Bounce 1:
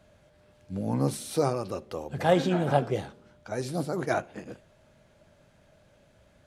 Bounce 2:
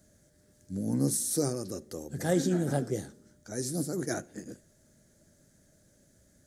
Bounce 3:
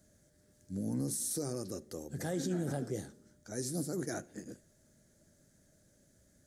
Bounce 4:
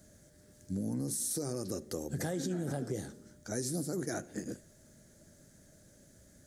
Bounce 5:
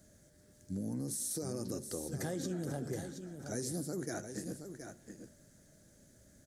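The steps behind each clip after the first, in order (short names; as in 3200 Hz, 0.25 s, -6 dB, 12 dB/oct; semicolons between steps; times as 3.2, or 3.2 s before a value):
EQ curve 120 Hz 0 dB, 300 Hz +5 dB, 1000 Hz -13 dB, 1800 Hz 0 dB, 2600 Hz -13 dB, 6500 Hz +13 dB; gain -3.5 dB
limiter -23 dBFS, peak gain reduction 8.5 dB; gain -3.5 dB
compressor 6:1, threshold -39 dBFS, peak gain reduction 8.5 dB; gain +7 dB
echo 0.722 s -8.5 dB; gain -3 dB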